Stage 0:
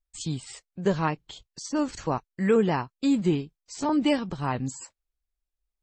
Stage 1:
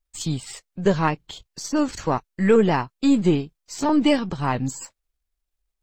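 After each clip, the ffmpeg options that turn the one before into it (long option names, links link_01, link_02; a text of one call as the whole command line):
ffmpeg -i in.wav -af "aeval=exprs='if(lt(val(0),0),0.708*val(0),val(0))':channel_layout=same,volume=6.5dB" out.wav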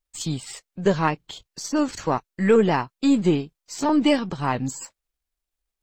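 ffmpeg -i in.wav -af "lowshelf=frequency=93:gain=-7.5" out.wav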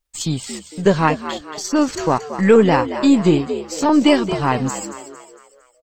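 ffmpeg -i in.wav -filter_complex "[0:a]asplit=6[link_01][link_02][link_03][link_04][link_05][link_06];[link_02]adelay=228,afreqshift=73,volume=-11.5dB[link_07];[link_03]adelay=456,afreqshift=146,volume=-18.1dB[link_08];[link_04]adelay=684,afreqshift=219,volume=-24.6dB[link_09];[link_05]adelay=912,afreqshift=292,volume=-31.2dB[link_10];[link_06]adelay=1140,afreqshift=365,volume=-37.7dB[link_11];[link_01][link_07][link_08][link_09][link_10][link_11]amix=inputs=6:normalize=0,volume=5.5dB" out.wav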